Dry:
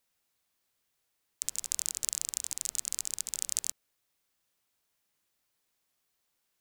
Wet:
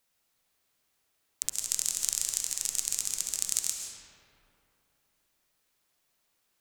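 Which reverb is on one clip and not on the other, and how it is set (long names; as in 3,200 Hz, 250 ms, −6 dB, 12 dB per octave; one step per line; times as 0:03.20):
comb and all-pass reverb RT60 2.8 s, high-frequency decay 0.5×, pre-delay 95 ms, DRR 1.5 dB
level +2.5 dB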